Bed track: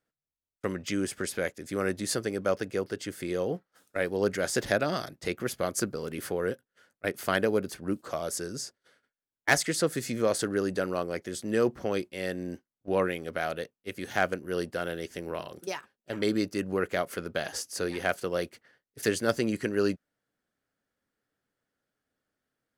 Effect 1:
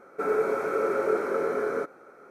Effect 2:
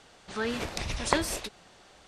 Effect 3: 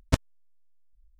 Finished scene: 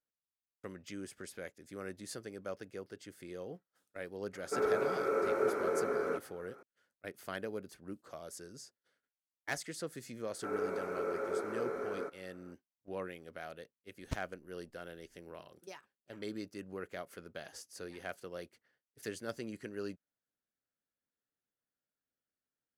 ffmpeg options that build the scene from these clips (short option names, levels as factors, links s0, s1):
-filter_complex "[1:a]asplit=2[s0][s1];[0:a]volume=0.188[s2];[s0]atrim=end=2.3,asetpts=PTS-STARTPTS,volume=0.501,afade=t=in:d=0.004:c=hsin,afade=t=out:st=2.296:d=0.004:c=hsin,adelay=190953S[s3];[s1]atrim=end=2.3,asetpts=PTS-STARTPTS,volume=0.282,afade=t=in:d=0.004:c=hsin,afade=t=out:st=2.296:d=0.004:c=hsin,adelay=10240[s4];[3:a]atrim=end=1.19,asetpts=PTS-STARTPTS,volume=0.158,afade=t=in:d=0.004:c=hsin,afade=t=out:st=1.186:d=0.004:c=hsin,adelay=13990[s5];[s2][s3][s4][s5]amix=inputs=4:normalize=0"